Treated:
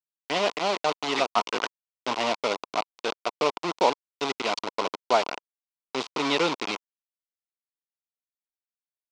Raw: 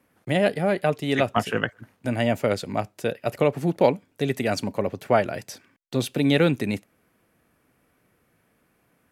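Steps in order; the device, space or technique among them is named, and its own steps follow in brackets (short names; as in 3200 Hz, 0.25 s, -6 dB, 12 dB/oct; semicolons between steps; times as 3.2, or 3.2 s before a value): hand-held game console (bit-crush 4-bit; speaker cabinet 430–5500 Hz, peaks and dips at 560 Hz -6 dB, 1000 Hz +7 dB, 1700 Hz -10 dB)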